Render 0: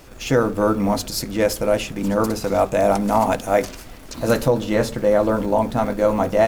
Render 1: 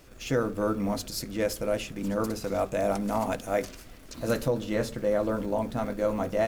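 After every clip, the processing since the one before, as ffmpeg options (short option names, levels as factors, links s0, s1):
-af "equalizer=f=870:w=2.6:g=-5,volume=0.376"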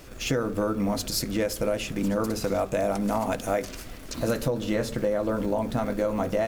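-af "acompressor=threshold=0.0316:ratio=6,volume=2.37"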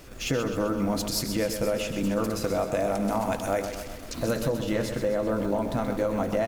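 -af "aecho=1:1:129|258|387|516|645|774|903:0.376|0.207|0.114|0.0625|0.0344|0.0189|0.0104,volume=0.891"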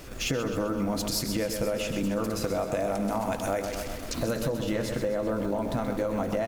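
-af "acompressor=threshold=0.0282:ratio=2.5,volume=1.5"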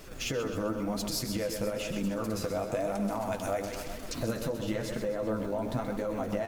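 -af "flanger=delay=4.3:depth=7.8:regen=41:speed=1:shape=triangular"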